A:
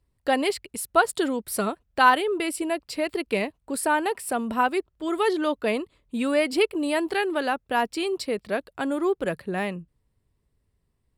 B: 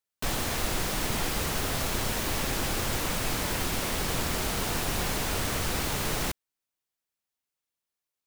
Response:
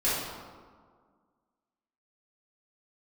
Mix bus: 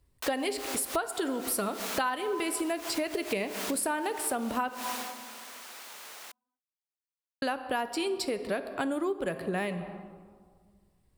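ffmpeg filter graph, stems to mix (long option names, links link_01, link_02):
-filter_complex "[0:a]highshelf=frequency=5400:gain=4.5,volume=2dB,asplit=3[link_01][link_02][link_03];[link_01]atrim=end=4.69,asetpts=PTS-STARTPTS,afade=type=out:start_time=4.686:duration=0.004:curve=hsin[link_04];[link_02]atrim=start=4.69:end=7.42,asetpts=PTS-STARTPTS,volume=0[link_05];[link_03]atrim=start=7.42,asetpts=PTS-STARTPTS,afade=type=in:duration=0.004:curve=hsin[link_06];[link_04][link_05][link_06]concat=n=3:v=0:a=1,asplit=3[link_07][link_08][link_09];[link_08]volume=-21.5dB[link_10];[1:a]highpass=740,volume=-2dB,afade=type=out:start_time=4.9:duration=0.23:silence=0.266073[link_11];[link_09]apad=whole_len=364520[link_12];[link_11][link_12]sidechaincompress=threshold=-35dB:ratio=8:attack=28:release=119[link_13];[2:a]atrim=start_sample=2205[link_14];[link_10][link_14]afir=irnorm=-1:irlink=0[link_15];[link_07][link_13][link_15]amix=inputs=3:normalize=0,acompressor=threshold=-28dB:ratio=6"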